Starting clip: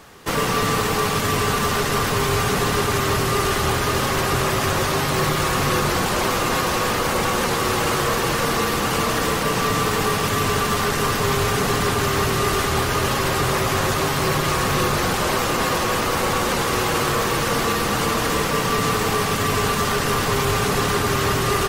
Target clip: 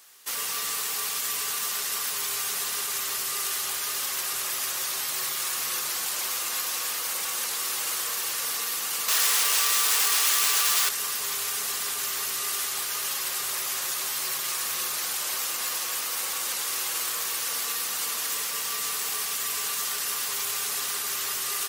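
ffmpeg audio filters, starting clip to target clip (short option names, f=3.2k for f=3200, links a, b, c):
-filter_complex "[0:a]asettb=1/sr,asplit=3[a][b][c];[a]atrim=end=9.084[d];[b]atrim=start=9.08:end=10.89,asetpts=PTS-STARTPTS,afade=t=in:d=0.004:c=qsin,afade=t=out:st=1.806:d=0.004:c=qsin,asplit=2[e][f];[f]highpass=f=720:p=1,volume=29dB,asoftclip=type=tanh:threshold=-10dB[g];[e][g]amix=inputs=2:normalize=0,lowpass=f=7k:p=1,volume=-6dB[h];[c]atrim=start=10.886[i];[d][h]acrossfade=d=0.004:c1=hsin:c2=qsin[j];[j][i]acrossfade=d=0.004:c1=qsin:c2=hsin,aderivative"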